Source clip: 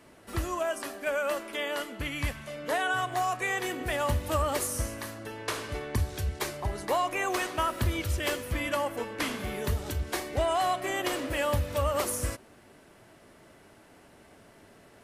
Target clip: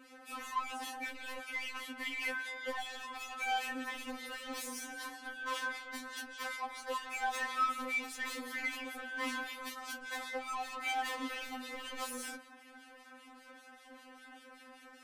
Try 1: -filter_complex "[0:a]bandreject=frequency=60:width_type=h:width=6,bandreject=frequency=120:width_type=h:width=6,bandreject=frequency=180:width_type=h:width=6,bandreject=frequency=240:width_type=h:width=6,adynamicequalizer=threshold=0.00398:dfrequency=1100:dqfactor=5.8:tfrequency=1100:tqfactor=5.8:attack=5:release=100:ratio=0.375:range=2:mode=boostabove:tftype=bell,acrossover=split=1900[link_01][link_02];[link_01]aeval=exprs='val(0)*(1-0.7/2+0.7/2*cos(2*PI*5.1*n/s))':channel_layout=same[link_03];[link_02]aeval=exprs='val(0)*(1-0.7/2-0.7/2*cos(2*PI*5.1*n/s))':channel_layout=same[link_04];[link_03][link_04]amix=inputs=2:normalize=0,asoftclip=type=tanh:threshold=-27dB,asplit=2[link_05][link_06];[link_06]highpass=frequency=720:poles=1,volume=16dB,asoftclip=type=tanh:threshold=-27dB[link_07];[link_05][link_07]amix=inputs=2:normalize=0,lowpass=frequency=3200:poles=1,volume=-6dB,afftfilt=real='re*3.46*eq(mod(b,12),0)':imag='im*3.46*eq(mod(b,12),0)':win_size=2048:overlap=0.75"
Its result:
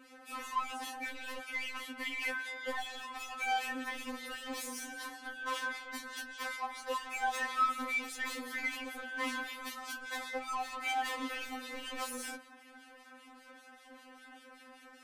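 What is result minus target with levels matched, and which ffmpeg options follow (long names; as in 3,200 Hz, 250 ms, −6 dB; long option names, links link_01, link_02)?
soft clipping: distortion −6 dB
-filter_complex "[0:a]bandreject=frequency=60:width_type=h:width=6,bandreject=frequency=120:width_type=h:width=6,bandreject=frequency=180:width_type=h:width=6,bandreject=frequency=240:width_type=h:width=6,adynamicequalizer=threshold=0.00398:dfrequency=1100:dqfactor=5.8:tfrequency=1100:tqfactor=5.8:attack=5:release=100:ratio=0.375:range=2:mode=boostabove:tftype=bell,acrossover=split=1900[link_01][link_02];[link_01]aeval=exprs='val(0)*(1-0.7/2+0.7/2*cos(2*PI*5.1*n/s))':channel_layout=same[link_03];[link_02]aeval=exprs='val(0)*(1-0.7/2-0.7/2*cos(2*PI*5.1*n/s))':channel_layout=same[link_04];[link_03][link_04]amix=inputs=2:normalize=0,asoftclip=type=tanh:threshold=-34dB,asplit=2[link_05][link_06];[link_06]highpass=frequency=720:poles=1,volume=16dB,asoftclip=type=tanh:threshold=-27dB[link_07];[link_05][link_07]amix=inputs=2:normalize=0,lowpass=frequency=3200:poles=1,volume=-6dB,afftfilt=real='re*3.46*eq(mod(b,12),0)':imag='im*3.46*eq(mod(b,12),0)':win_size=2048:overlap=0.75"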